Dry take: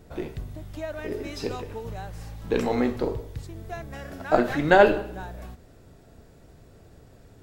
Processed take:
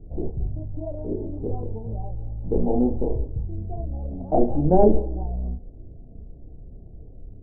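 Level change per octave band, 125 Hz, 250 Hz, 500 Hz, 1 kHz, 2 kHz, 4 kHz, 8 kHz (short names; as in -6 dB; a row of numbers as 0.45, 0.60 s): +7.5 dB, +4.0 dB, 0.0 dB, -3.0 dB, under -35 dB, under -40 dB, n/a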